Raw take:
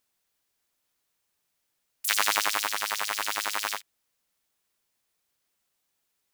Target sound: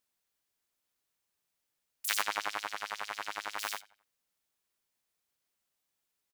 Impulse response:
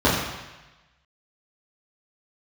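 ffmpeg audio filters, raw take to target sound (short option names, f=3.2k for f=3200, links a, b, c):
-filter_complex "[0:a]asplit=3[a][b][c];[a]afade=t=out:st=2.21:d=0.02[d];[b]aemphasis=mode=reproduction:type=75kf,afade=t=in:st=2.21:d=0.02,afade=t=out:st=3.58:d=0.02[e];[c]afade=t=in:st=3.58:d=0.02[f];[d][e][f]amix=inputs=3:normalize=0,asplit=2[g][h];[h]adelay=88,lowpass=f=4k:p=1,volume=-21dB,asplit=2[i][j];[j]adelay=88,lowpass=f=4k:p=1,volume=0.43,asplit=2[k][l];[l]adelay=88,lowpass=f=4k:p=1,volume=0.43[m];[g][i][k][m]amix=inputs=4:normalize=0,volume=-6dB"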